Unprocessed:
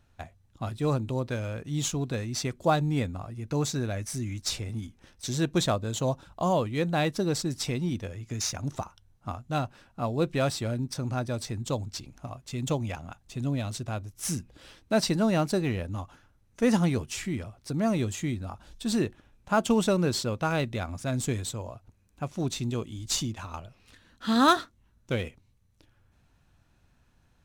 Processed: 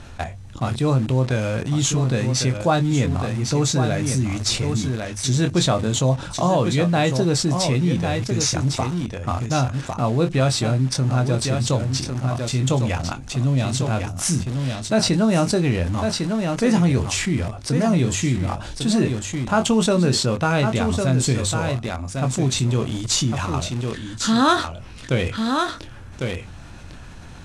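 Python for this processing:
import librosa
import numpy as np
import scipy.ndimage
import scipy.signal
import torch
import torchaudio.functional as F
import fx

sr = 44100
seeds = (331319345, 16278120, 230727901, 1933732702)

p1 = fx.hum_notches(x, sr, base_hz=50, count=2)
p2 = p1 + fx.echo_single(p1, sr, ms=1102, db=-9.5, dry=0)
p3 = fx.dynamic_eq(p2, sr, hz=130.0, q=2.5, threshold_db=-44.0, ratio=4.0, max_db=5)
p4 = fx.doubler(p3, sr, ms=23.0, db=-9.0)
p5 = fx.quant_dither(p4, sr, seeds[0], bits=6, dither='none')
p6 = p4 + F.gain(torch.from_numpy(p5), -10.5).numpy()
p7 = scipy.signal.sosfilt(scipy.signal.butter(4, 10000.0, 'lowpass', fs=sr, output='sos'), p6)
y = fx.env_flatten(p7, sr, amount_pct=50)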